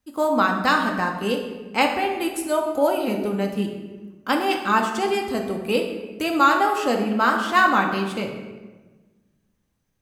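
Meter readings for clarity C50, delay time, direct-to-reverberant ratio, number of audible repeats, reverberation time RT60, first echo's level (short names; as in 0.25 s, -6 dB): 5.5 dB, none, 1.5 dB, none, 1.3 s, none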